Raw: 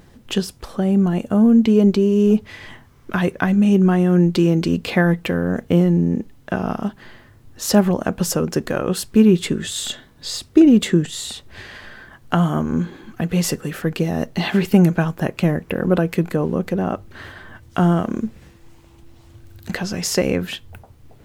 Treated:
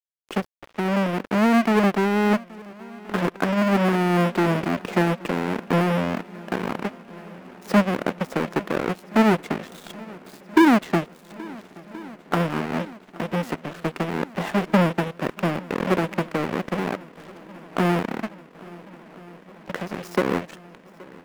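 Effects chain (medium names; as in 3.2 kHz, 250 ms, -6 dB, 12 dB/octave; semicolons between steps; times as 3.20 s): square wave that keeps the level; three-band isolator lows -17 dB, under 180 Hz, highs -15 dB, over 2.5 kHz; in parallel at -3 dB: compression 8:1, threshold -26 dBFS, peak gain reduction 21.5 dB; on the sum: wow and flutter 26 cents; crossover distortion -26.5 dBFS; on a send: shuffle delay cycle 1375 ms, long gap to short 1.5:1, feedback 70%, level -22.5 dB; on the sum: trim -6 dB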